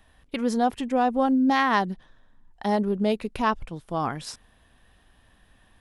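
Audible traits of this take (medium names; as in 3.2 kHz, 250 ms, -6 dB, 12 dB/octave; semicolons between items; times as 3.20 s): noise floor -61 dBFS; spectral tilt -4.0 dB/octave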